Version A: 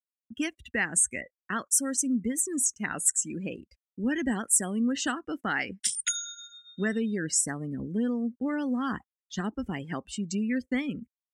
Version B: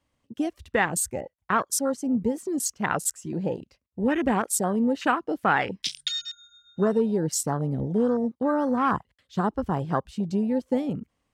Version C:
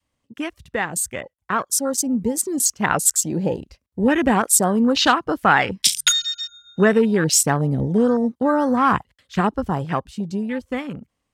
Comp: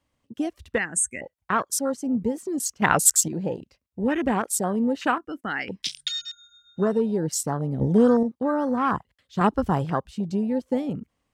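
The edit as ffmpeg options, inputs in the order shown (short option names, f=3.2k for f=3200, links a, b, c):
-filter_complex "[0:a]asplit=2[a][b];[2:a]asplit=3[c][d][e];[1:a]asplit=6[f][g][h][i][j][k];[f]atrim=end=0.782[l];[a]atrim=start=0.778:end=1.212[m];[g]atrim=start=1.208:end=2.822[n];[c]atrim=start=2.818:end=3.282[o];[h]atrim=start=3.278:end=5.182[p];[b]atrim=start=5.178:end=5.682[q];[i]atrim=start=5.678:end=7.812[r];[d]atrim=start=7.808:end=8.232[s];[j]atrim=start=8.228:end=9.412[t];[e]atrim=start=9.408:end=9.902[u];[k]atrim=start=9.898[v];[l][m]acrossfade=d=0.004:c1=hsin:c2=hsin[w];[w][n]acrossfade=d=0.004:c1=hsin:c2=hsin[x];[x][o]acrossfade=d=0.004:c1=hsin:c2=hsin[y];[y][p]acrossfade=d=0.004:c1=hsin:c2=hsin[z];[z][q]acrossfade=d=0.004:c1=hsin:c2=hsin[aa];[aa][r]acrossfade=d=0.004:c1=hsin:c2=hsin[ab];[ab][s]acrossfade=d=0.004:c1=hsin:c2=hsin[ac];[ac][t]acrossfade=d=0.004:c1=hsin:c2=hsin[ad];[ad][u]acrossfade=d=0.004:c1=hsin:c2=hsin[ae];[ae][v]acrossfade=d=0.004:c1=hsin:c2=hsin"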